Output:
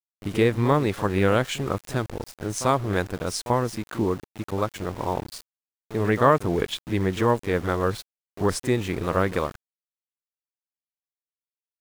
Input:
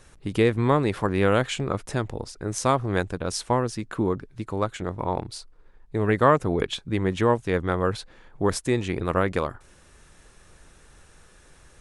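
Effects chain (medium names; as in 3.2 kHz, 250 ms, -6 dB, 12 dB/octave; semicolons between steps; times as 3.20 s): pre-echo 41 ms -13 dB; small samples zeroed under -36 dBFS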